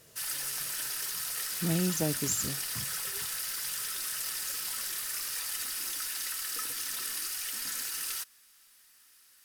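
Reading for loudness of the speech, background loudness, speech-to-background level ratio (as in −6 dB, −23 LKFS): −32.5 LKFS, −32.5 LKFS, 0.0 dB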